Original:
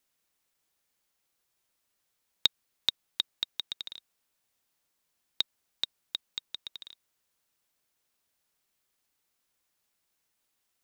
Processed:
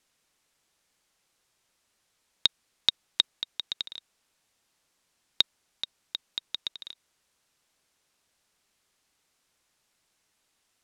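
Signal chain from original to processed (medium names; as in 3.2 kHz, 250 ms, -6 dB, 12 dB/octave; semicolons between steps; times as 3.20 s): in parallel at +2 dB: peak limiter -14 dBFS, peak gain reduction 8.5 dB; on the sum: low-pass 9.5 kHz 12 dB/octave; level held to a coarse grid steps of 11 dB; trim +2 dB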